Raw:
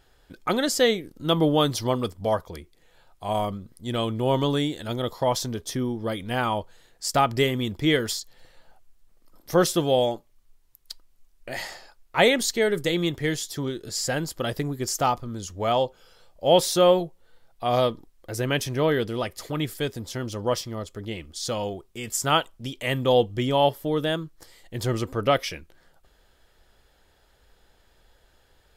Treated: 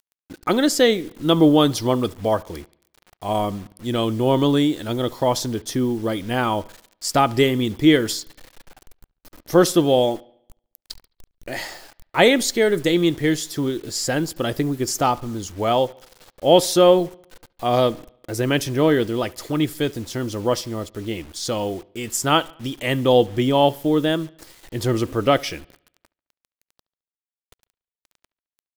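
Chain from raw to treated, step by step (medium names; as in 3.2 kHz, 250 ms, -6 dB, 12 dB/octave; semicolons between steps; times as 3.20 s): peaking EQ 310 Hz +6.5 dB 0.6 oct; bit crusher 8-bit; bucket-brigade echo 71 ms, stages 2048, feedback 49%, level -24 dB; trim +3 dB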